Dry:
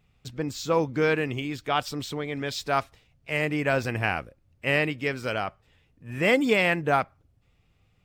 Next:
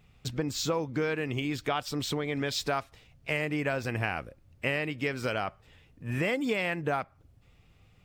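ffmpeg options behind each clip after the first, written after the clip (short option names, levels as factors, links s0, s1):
-af "acompressor=threshold=0.0251:ratio=6,volume=1.78"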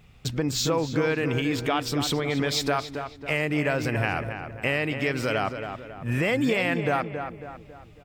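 -filter_complex "[0:a]asplit=2[s0][s1];[s1]alimiter=limit=0.0631:level=0:latency=1,volume=1.12[s2];[s0][s2]amix=inputs=2:normalize=0,asplit=2[s3][s4];[s4]adelay=274,lowpass=f=2500:p=1,volume=0.422,asplit=2[s5][s6];[s6]adelay=274,lowpass=f=2500:p=1,volume=0.46,asplit=2[s7][s8];[s8]adelay=274,lowpass=f=2500:p=1,volume=0.46,asplit=2[s9][s10];[s10]adelay=274,lowpass=f=2500:p=1,volume=0.46,asplit=2[s11][s12];[s12]adelay=274,lowpass=f=2500:p=1,volume=0.46[s13];[s3][s5][s7][s9][s11][s13]amix=inputs=6:normalize=0"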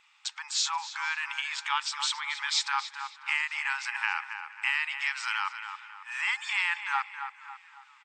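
-filter_complex "[0:a]asplit=4[s0][s1][s2][s3];[s1]adelay=479,afreqshift=-43,volume=0.0668[s4];[s2]adelay=958,afreqshift=-86,volume=0.0327[s5];[s3]adelay=1437,afreqshift=-129,volume=0.016[s6];[s0][s4][s5][s6]amix=inputs=4:normalize=0,afftfilt=real='re*between(b*sr/4096,800,8700)':imag='im*between(b*sr/4096,800,8700)':win_size=4096:overlap=0.75"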